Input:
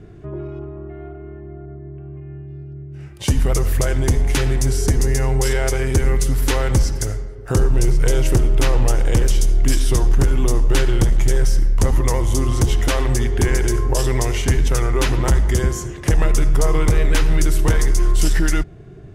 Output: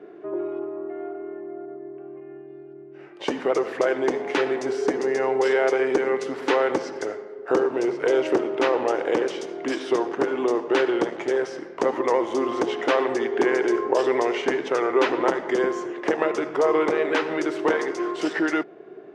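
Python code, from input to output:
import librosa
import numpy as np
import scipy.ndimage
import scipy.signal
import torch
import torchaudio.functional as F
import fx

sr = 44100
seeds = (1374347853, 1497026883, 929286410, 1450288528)

y = scipy.signal.sosfilt(scipy.signal.butter(4, 340.0, 'highpass', fs=sr, output='sos'), x)
y = fx.spacing_loss(y, sr, db_at_10k=35)
y = y * librosa.db_to_amplitude(6.5)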